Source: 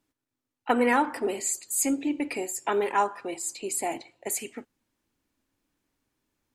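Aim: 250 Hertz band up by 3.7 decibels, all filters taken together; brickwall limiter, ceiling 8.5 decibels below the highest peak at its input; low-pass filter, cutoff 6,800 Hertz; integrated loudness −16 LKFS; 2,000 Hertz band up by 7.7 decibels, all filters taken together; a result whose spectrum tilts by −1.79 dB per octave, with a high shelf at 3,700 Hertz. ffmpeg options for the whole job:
ffmpeg -i in.wav -af "lowpass=6800,equalizer=frequency=250:width_type=o:gain=4,equalizer=frequency=2000:width_type=o:gain=7,highshelf=frequency=3700:gain=8,volume=10.5dB,alimiter=limit=-4.5dB:level=0:latency=1" out.wav

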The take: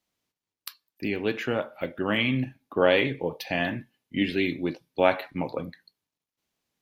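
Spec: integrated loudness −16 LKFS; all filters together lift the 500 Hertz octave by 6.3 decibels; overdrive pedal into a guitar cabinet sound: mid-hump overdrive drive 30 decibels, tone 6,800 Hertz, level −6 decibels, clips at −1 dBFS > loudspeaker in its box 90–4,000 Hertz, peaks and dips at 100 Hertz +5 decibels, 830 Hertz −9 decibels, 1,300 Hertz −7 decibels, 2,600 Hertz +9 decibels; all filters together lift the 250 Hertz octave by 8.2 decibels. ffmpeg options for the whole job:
ffmpeg -i in.wav -filter_complex "[0:a]equalizer=frequency=250:width_type=o:gain=8,equalizer=frequency=500:width_type=o:gain=6.5,asplit=2[link_01][link_02];[link_02]highpass=frequency=720:poles=1,volume=30dB,asoftclip=type=tanh:threshold=-1dB[link_03];[link_01][link_03]amix=inputs=2:normalize=0,lowpass=frequency=6800:poles=1,volume=-6dB,highpass=90,equalizer=frequency=100:width_type=q:width=4:gain=5,equalizer=frequency=830:width_type=q:width=4:gain=-9,equalizer=frequency=1300:width_type=q:width=4:gain=-7,equalizer=frequency=2600:width_type=q:width=4:gain=9,lowpass=frequency=4000:width=0.5412,lowpass=frequency=4000:width=1.3066,volume=-5dB" out.wav

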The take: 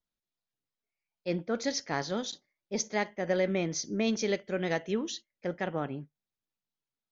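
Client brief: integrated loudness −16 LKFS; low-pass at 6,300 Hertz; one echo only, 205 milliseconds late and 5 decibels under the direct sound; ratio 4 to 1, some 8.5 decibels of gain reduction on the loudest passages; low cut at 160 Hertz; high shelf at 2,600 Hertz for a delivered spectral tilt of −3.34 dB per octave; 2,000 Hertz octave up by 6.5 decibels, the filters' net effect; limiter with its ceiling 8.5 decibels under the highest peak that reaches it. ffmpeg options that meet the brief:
ffmpeg -i in.wav -af "highpass=160,lowpass=6300,equalizer=frequency=2000:width_type=o:gain=6,highshelf=frequency=2600:gain=3.5,acompressor=threshold=-32dB:ratio=4,alimiter=level_in=5dB:limit=-24dB:level=0:latency=1,volume=-5dB,aecho=1:1:205:0.562,volume=23dB" out.wav

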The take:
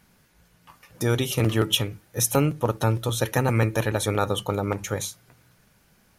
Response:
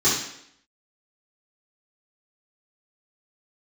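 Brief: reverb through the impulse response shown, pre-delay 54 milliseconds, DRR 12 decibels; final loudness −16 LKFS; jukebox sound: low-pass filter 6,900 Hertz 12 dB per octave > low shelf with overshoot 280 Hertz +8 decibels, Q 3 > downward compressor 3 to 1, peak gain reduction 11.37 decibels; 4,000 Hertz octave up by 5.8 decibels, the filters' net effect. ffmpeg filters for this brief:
-filter_complex "[0:a]equalizer=frequency=4000:width_type=o:gain=8,asplit=2[link_01][link_02];[1:a]atrim=start_sample=2205,adelay=54[link_03];[link_02][link_03]afir=irnorm=-1:irlink=0,volume=-28.5dB[link_04];[link_01][link_04]amix=inputs=2:normalize=0,lowpass=6900,lowshelf=frequency=280:width_type=q:width=3:gain=8,acompressor=threshold=-23dB:ratio=3,volume=9.5dB"

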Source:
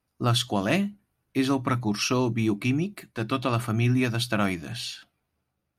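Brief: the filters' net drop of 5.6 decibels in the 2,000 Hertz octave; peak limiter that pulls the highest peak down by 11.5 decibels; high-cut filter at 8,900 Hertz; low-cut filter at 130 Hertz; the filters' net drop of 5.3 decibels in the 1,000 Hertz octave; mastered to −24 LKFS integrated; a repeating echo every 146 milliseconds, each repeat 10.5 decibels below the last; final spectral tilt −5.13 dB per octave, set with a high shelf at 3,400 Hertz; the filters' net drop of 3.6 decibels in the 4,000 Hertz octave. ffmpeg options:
ffmpeg -i in.wav -af "highpass=130,lowpass=8900,equalizer=frequency=1000:width_type=o:gain=-5.5,equalizer=frequency=2000:width_type=o:gain=-6,highshelf=frequency=3400:gain=4.5,equalizer=frequency=4000:width_type=o:gain=-5.5,alimiter=limit=-24dB:level=0:latency=1,aecho=1:1:146|292|438:0.299|0.0896|0.0269,volume=9.5dB" out.wav

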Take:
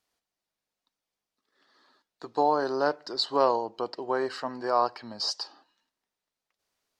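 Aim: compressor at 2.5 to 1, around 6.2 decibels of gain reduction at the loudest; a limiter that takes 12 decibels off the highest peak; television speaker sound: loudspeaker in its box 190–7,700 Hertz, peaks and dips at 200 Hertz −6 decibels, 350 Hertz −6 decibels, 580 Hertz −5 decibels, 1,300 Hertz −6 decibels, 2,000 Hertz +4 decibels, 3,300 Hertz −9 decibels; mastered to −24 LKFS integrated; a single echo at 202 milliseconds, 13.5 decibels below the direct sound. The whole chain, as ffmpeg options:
ffmpeg -i in.wav -af "acompressor=threshold=-27dB:ratio=2.5,alimiter=level_in=4dB:limit=-24dB:level=0:latency=1,volume=-4dB,highpass=frequency=190:width=0.5412,highpass=frequency=190:width=1.3066,equalizer=frequency=200:width_type=q:width=4:gain=-6,equalizer=frequency=350:width_type=q:width=4:gain=-6,equalizer=frequency=580:width_type=q:width=4:gain=-5,equalizer=frequency=1300:width_type=q:width=4:gain=-6,equalizer=frequency=2000:width_type=q:width=4:gain=4,equalizer=frequency=3300:width_type=q:width=4:gain=-9,lowpass=frequency=7700:width=0.5412,lowpass=frequency=7700:width=1.3066,aecho=1:1:202:0.211,volume=17dB" out.wav

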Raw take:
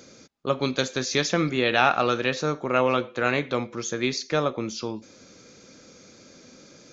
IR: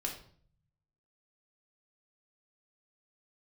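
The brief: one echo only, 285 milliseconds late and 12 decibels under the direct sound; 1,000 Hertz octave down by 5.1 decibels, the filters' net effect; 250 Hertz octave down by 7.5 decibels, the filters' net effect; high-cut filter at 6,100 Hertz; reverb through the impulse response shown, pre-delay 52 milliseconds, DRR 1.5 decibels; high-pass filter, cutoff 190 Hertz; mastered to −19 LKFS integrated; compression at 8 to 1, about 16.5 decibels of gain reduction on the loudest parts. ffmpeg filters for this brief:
-filter_complex "[0:a]highpass=190,lowpass=6100,equalizer=frequency=250:width_type=o:gain=-8,equalizer=frequency=1000:width_type=o:gain=-7,acompressor=threshold=-37dB:ratio=8,aecho=1:1:285:0.251,asplit=2[link_01][link_02];[1:a]atrim=start_sample=2205,adelay=52[link_03];[link_02][link_03]afir=irnorm=-1:irlink=0,volume=-3dB[link_04];[link_01][link_04]amix=inputs=2:normalize=0,volume=19.5dB"

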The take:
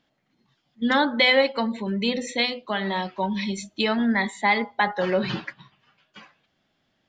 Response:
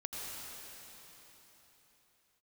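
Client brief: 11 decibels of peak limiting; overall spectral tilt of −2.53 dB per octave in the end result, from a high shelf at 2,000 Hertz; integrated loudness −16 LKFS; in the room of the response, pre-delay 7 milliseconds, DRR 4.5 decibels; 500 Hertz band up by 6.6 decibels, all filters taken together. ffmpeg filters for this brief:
-filter_complex "[0:a]equalizer=frequency=500:width_type=o:gain=7,highshelf=frequency=2000:gain=4,alimiter=limit=-13.5dB:level=0:latency=1,asplit=2[link_01][link_02];[1:a]atrim=start_sample=2205,adelay=7[link_03];[link_02][link_03]afir=irnorm=-1:irlink=0,volume=-6dB[link_04];[link_01][link_04]amix=inputs=2:normalize=0,volume=7.5dB"

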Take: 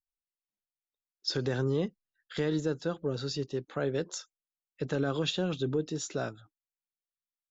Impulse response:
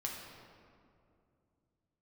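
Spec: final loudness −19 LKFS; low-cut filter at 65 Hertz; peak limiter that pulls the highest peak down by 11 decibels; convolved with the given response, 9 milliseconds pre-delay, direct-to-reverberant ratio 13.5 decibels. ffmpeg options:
-filter_complex "[0:a]highpass=65,alimiter=level_in=5.5dB:limit=-24dB:level=0:latency=1,volume=-5.5dB,asplit=2[link_01][link_02];[1:a]atrim=start_sample=2205,adelay=9[link_03];[link_02][link_03]afir=irnorm=-1:irlink=0,volume=-14.5dB[link_04];[link_01][link_04]amix=inputs=2:normalize=0,volume=20.5dB"

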